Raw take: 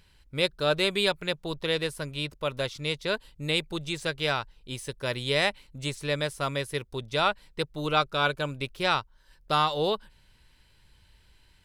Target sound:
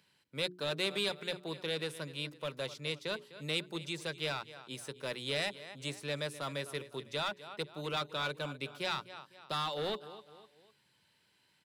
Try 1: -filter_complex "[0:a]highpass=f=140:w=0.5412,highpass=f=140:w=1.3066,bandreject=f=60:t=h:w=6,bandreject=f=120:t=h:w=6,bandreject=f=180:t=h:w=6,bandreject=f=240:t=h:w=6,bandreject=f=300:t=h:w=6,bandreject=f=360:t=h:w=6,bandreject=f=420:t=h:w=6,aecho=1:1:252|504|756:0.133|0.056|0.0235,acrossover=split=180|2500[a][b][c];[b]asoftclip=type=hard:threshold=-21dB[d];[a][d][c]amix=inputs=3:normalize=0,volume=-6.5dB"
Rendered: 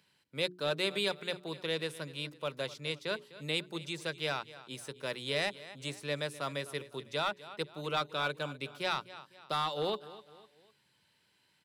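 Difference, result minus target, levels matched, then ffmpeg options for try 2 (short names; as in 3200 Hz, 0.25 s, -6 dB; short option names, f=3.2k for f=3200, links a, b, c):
hard clip: distortion -6 dB
-filter_complex "[0:a]highpass=f=140:w=0.5412,highpass=f=140:w=1.3066,bandreject=f=60:t=h:w=6,bandreject=f=120:t=h:w=6,bandreject=f=180:t=h:w=6,bandreject=f=240:t=h:w=6,bandreject=f=300:t=h:w=6,bandreject=f=360:t=h:w=6,bandreject=f=420:t=h:w=6,aecho=1:1:252|504|756:0.133|0.056|0.0235,acrossover=split=180|2500[a][b][c];[b]asoftclip=type=hard:threshold=-27.5dB[d];[a][d][c]amix=inputs=3:normalize=0,volume=-6.5dB"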